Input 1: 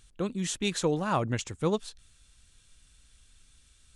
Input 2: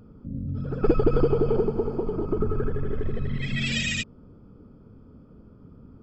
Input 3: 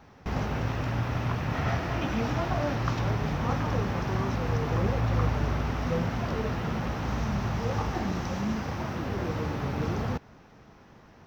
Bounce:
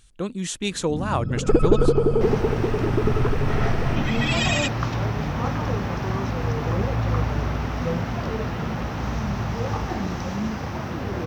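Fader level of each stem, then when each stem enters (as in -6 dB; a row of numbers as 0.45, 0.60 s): +3.0, +3.0, +3.0 dB; 0.00, 0.65, 1.95 s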